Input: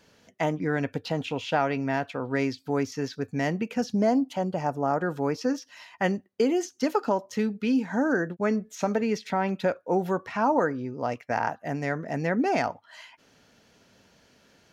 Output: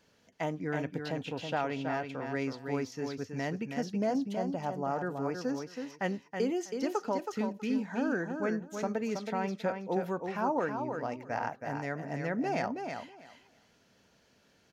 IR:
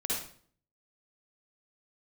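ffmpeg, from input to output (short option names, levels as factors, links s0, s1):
-af "aecho=1:1:323|646|969:0.501|0.0852|0.0145,volume=0.422"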